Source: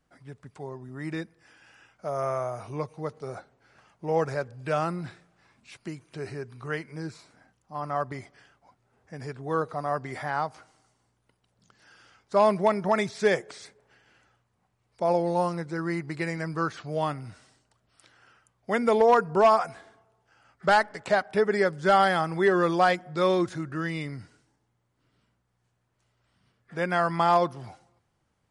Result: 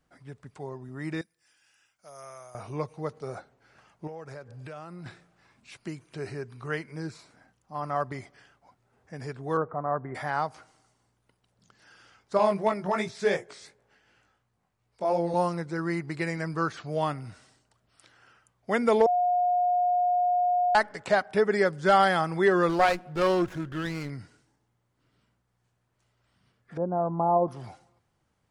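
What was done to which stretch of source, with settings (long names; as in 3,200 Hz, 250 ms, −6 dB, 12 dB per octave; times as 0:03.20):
0:01.21–0:02.55: first-order pre-emphasis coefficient 0.9
0:04.07–0:05.06: downward compressor 5 to 1, threshold −39 dBFS
0:09.57–0:10.15: low-pass filter 1,500 Hz 24 dB per octave
0:12.37–0:15.34: chorus effect 2.8 Hz, delay 17.5 ms, depth 3.3 ms
0:19.06–0:20.75: beep over 716 Hz −21 dBFS
0:22.69–0:24.10: windowed peak hold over 9 samples
0:26.77–0:27.48: Butterworth low-pass 910 Hz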